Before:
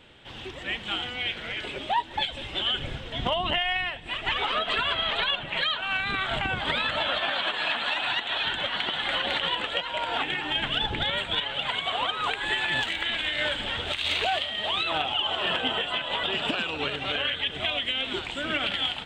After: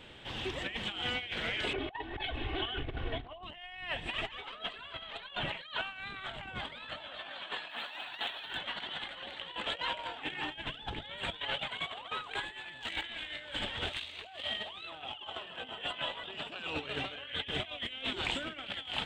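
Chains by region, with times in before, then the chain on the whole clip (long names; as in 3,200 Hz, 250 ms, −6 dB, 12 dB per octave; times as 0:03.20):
0:01.73–0:03.43: high-frequency loss of the air 480 metres + comb filter 2.7 ms, depth 83% + highs frequency-modulated by the lows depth 0.32 ms
0:07.69–0:08.57: running median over 3 samples + low-shelf EQ 160 Hz −7 dB
whole clip: notch filter 1,400 Hz, Q 30; compressor whose output falls as the input rises −34 dBFS, ratio −0.5; level −4.5 dB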